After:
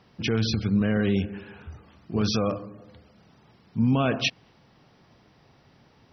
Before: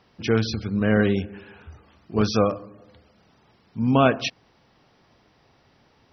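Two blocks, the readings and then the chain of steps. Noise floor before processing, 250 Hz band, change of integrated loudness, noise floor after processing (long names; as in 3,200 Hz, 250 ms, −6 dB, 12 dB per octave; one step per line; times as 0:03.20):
−61 dBFS, −1.5 dB, −3.0 dB, −59 dBFS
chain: parametric band 150 Hz +5.5 dB 1.5 octaves
brickwall limiter −14.5 dBFS, peak gain reduction 10 dB
dynamic equaliser 2,900 Hz, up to +4 dB, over −49 dBFS, Q 1.6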